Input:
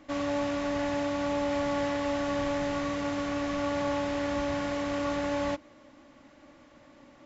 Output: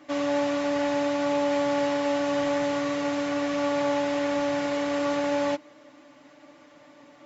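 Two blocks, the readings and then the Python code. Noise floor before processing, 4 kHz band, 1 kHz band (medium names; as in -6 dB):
-56 dBFS, +4.0 dB, +4.0 dB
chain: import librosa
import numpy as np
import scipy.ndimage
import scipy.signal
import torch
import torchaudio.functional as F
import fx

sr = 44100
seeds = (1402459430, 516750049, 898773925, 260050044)

y = fx.highpass(x, sr, hz=290.0, slope=6)
y = y + 0.65 * np.pad(y, (int(6.8 * sr / 1000.0), 0))[:len(y)]
y = y * 10.0 ** (2.5 / 20.0)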